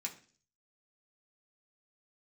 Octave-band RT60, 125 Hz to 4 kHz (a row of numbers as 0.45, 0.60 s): 0.65, 0.55, 0.50, 0.40, 0.45, 0.55 s